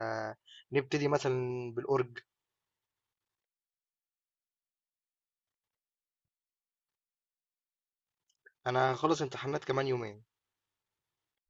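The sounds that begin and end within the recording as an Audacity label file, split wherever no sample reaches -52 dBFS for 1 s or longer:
8.460000	10.190000	sound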